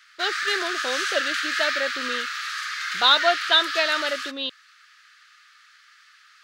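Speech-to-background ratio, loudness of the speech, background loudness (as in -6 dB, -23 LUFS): 3.0 dB, -23.5 LUFS, -26.5 LUFS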